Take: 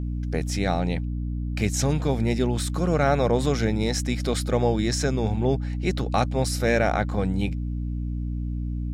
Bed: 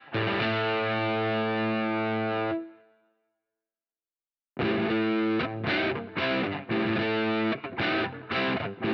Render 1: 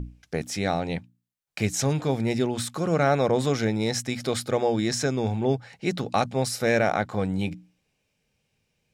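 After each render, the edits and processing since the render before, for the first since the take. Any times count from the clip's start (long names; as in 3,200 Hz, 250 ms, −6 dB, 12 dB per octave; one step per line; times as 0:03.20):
mains-hum notches 60/120/180/240/300 Hz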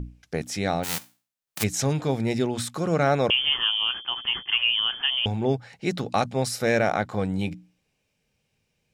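0:00.83–0:01.62: spectral envelope flattened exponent 0.1
0:03.30–0:05.26: voice inversion scrambler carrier 3,300 Hz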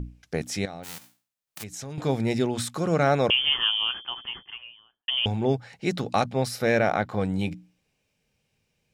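0:00.65–0:01.98: downward compressor 3 to 1, threshold −38 dBFS
0:03.68–0:05.08: fade out and dull
0:06.23–0:07.21: parametric band 7,700 Hz −7 dB 0.94 octaves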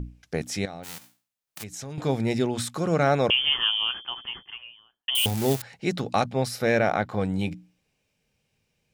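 0:05.15–0:05.62: spike at every zero crossing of −17.5 dBFS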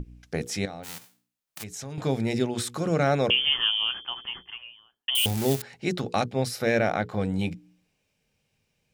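mains-hum notches 60/120/180/240/300/360/420/480 Hz
dynamic equaliser 1,000 Hz, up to −4 dB, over −35 dBFS, Q 1.2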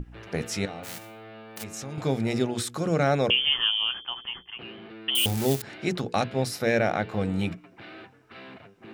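mix in bed −17.5 dB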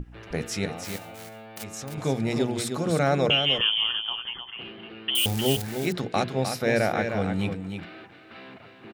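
single-tap delay 307 ms −7 dB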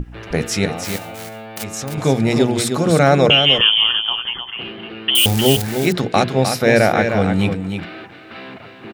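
level +10 dB
brickwall limiter −1 dBFS, peak gain reduction 1 dB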